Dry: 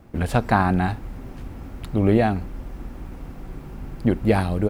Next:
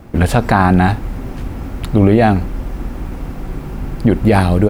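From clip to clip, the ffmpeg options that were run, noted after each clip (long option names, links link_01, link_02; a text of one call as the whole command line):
ffmpeg -i in.wav -af "alimiter=level_in=12dB:limit=-1dB:release=50:level=0:latency=1,volume=-1dB" out.wav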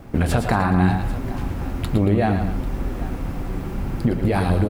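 ffmpeg -i in.wav -filter_complex "[0:a]acompressor=threshold=-14dB:ratio=6,asplit=2[link_01][link_02];[link_02]aecho=0:1:110|121|230|792:0.355|0.282|0.178|0.133[link_03];[link_01][link_03]amix=inputs=2:normalize=0,flanger=delay=7.1:depth=3.3:regen=-68:speed=0.69:shape=sinusoidal,volume=2dB" out.wav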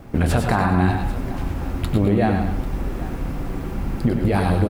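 ffmpeg -i in.wav -af "aecho=1:1:96:0.398" out.wav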